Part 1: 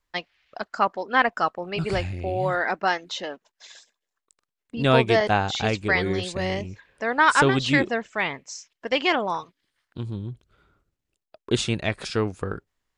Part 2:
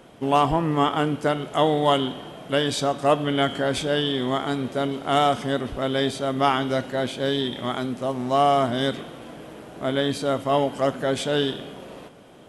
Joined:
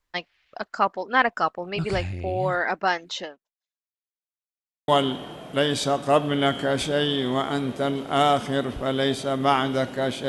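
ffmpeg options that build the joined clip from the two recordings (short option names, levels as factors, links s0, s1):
-filter_complex "[0:a]apad=whole_dur=10.28,atrim=end=10.28,asplit=2[s0][s1];[s0]atrim=end=4.14,asetpts=PTS-STARTPTS,afade=t=out:st=3.23:d=0.91:c=exp[s2];[s1]atrim=start=4.14:end=4.88,asetpts=PTS-STARTPTS,volume=0[s3];[1:a]atrim=start=1.84:end=7.24,asetpts=PTS-STARTPTS,afade=t=in:d=0.004:c=hsin[s4];[s2][s3][s4]concat=n=3:v=0:a=1"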